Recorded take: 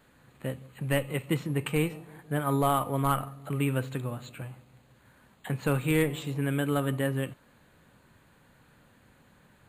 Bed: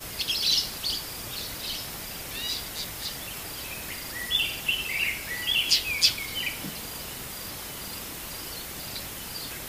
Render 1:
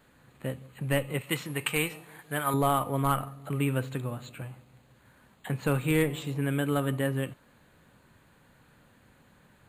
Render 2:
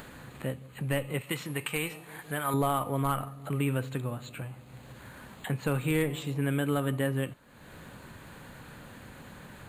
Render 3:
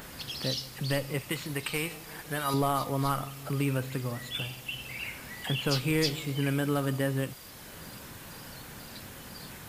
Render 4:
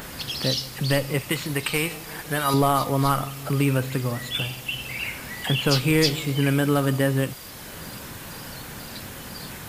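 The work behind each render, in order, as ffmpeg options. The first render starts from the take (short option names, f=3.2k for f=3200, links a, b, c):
-filter_complex "[0:a]asettb=1/sr,asplit=3[a][b][c];[a]atrim=end=1.214[d];[b]atrim=start=1.21:end=2.54,asetpts=PTS-STARTPTS,afade=t=in:d=0.004:c=qsin,afade=t=out:st=1.326:d=0.004:c=qsin,tiltshelf=f=740:g=-7[e];[c]atrim=start=2.536[f];[d][e]acrossfade=d=0.004:c1=hsin:c2=qsin[g];[g][f]acrossfade=d=0.004:c1=qsin:c2=hsin"
-af "alimiter=limit=-18dB:level=0:latency=1:release=85,acompressor=mode=upward:threshold=-35dB:ratio=2.5"
-filter_complex "[1:a]volume=-11dB[a];[0:a][a]amix=inputs=2:normalize=0"
-af "volume=7.5dB"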